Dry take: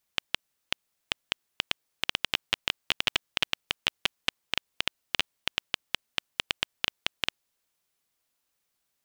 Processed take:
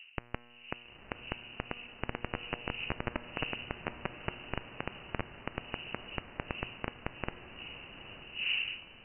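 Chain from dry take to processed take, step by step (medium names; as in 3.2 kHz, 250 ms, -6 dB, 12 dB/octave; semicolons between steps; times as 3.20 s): wind noise 280 Hz -42 dBFS; in parallel at 0 dB: compression, threshold -35 dBFS, peak gain reduction 15 dB; on the sum: frequency inversion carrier 2.9 kHz; feedback comb 120 Hz, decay 1.7 s, mix 60%; on a send: echo that smears into a reverb 914 ms, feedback 50%, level -11 dB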